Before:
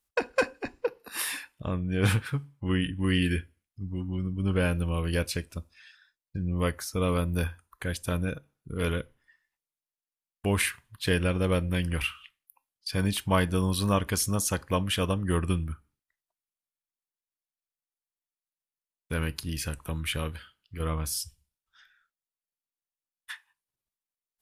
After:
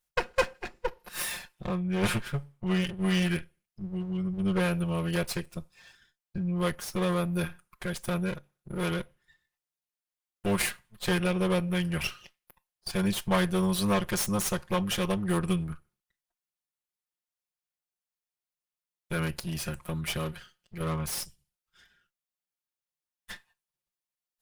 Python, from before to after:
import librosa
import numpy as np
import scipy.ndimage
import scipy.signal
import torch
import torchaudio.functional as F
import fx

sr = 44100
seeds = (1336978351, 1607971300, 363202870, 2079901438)

y = fx.lower_of_two(x, sr, delay_ms=5.6)
y = fx.peak_eq(y, sr, hz=280.0, db=-15.0, octaves=0.2)